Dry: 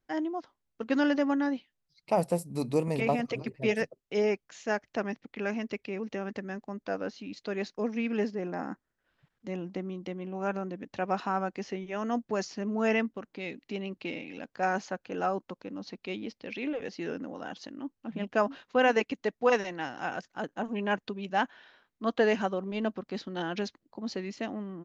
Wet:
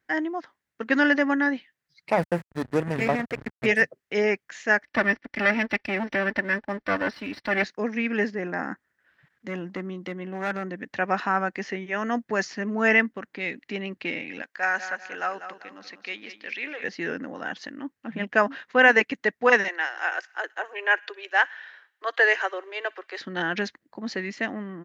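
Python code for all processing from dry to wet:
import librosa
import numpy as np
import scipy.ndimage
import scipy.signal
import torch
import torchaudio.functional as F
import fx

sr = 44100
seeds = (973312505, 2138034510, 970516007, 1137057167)

y = fx.chain(x, sr, fx.high_shelf(hz=6000.0, db=-2.0),
    fx.backlash(play_db=-28.5), at=(2.12, 3.66))
y = fx.chain(y, sr, fx.lower_of_two(delay_ms=3.4),
    fx.brickwall_lowpass(high_hz=5900.0),
    fx.leveller(passes=1), at=(4.83, 7.64))
y = fx.chain(y, sr, fx.notch(hz=2400.0, q=12.0),
    fx.clip_hard(threshold_db=-28.5), at=(9.48, 10.72))
y = fx.chain(y, sr, fx.highpass(hz=1200.0, slope=6),
    fx.echo_feedback(ms=195, feedback_pct=35, wet_db=-11.0), at=(14.42, 16.84))
y = fx.chain(y, sr, fx.steep_highpass(hz=330.0, slope=72),
    fx.low_shelf(hz=450.0, db=-9.0),
    fx.echo_wet_highpass(ms=60, feedback_pct=62, hz=1700.0, wet_db=-23), at=(19.68, 23.21))
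y = scipy.signal.sosfilt(scipy.signal.butter(2, 81.0, 'highpass', fs=sr, output='sos'), y)
y = fx.peak_eq(y, sr, hz=1800.0, db=13.5, octaves=0.72)
y = F.gain(torch.from_numpy(y), 3.0).numpy()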